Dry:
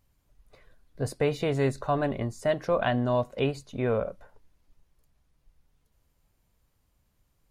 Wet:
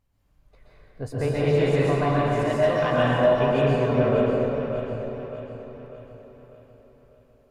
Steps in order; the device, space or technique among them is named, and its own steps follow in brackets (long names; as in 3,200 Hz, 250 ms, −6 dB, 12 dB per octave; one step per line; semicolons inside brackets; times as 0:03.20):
0:01.45–0:02.94: tilt shelving filter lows −4.5 dB
delay that swaps between a low-pass and a high-pass 298 ms, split 830 Hz, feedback 67%, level −5.5 dB
swimming-pool hall (convolution reverb RT60 2.9 s, pre-delay 118 ms, DRR −8 dB; high-shelf EQ 3,900 Hz −7 dB)
level −3 dB